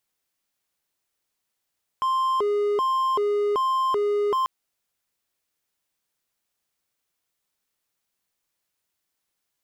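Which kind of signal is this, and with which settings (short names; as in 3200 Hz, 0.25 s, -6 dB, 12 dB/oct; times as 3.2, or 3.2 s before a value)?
siren hi-lo 412–1050 Hz 1.3/s triangle -18 dBFS 2.44 s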